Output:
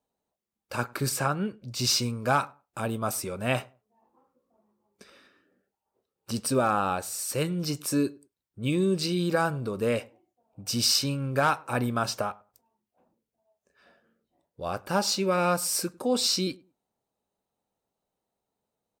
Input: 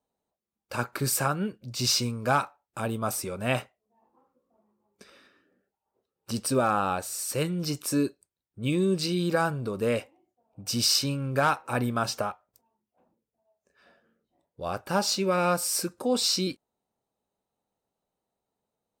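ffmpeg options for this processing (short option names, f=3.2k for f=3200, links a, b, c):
-filter_complex "[0:a]asettb=1/sr,asplit=3[a][b][c];[a]atrim=end=1.094[d];[b]atrim=start=1.09:end=1.67,asetpts=PTS-STARTPTS,afade=t=in:d=0.004:c=qsin,afade=t=out:st=0.576:d=0.004:c=qsin,highshelf=f=9.9k:g=-11[e];[c]atrim=start=1.666[f];[d][e]acrossfade=d=0.004:c1=hsin:c2=qsin[g];[g][f]acrossfade=d=0.004:c1=qsin:c2=hsin,asplit=2[h][i];[i]adelay=101,lowpass=f=1.2k:p=1,volume=-23dB,asplit=2[j][k];[k]adelay=101,lowpass=f=1.2k:p=1,volume=0.21[l];[h][j][l]amix=inputs=3:normalize=0"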